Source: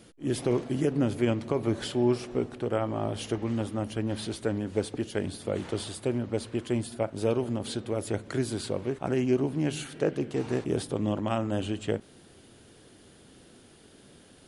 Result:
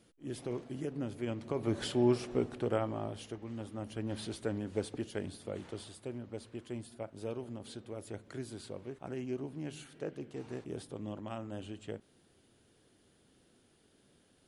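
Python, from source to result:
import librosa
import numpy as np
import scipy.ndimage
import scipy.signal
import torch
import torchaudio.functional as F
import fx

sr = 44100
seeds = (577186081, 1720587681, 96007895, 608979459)

y = fx.gain(x, sr, db=fx.line((1.22, -12.0), (1.84, -3.0), (2.71, -3.0), (3.4, -14.0), (4.15, -6.5), (4.97, -6.5), (5.98, -13.0)))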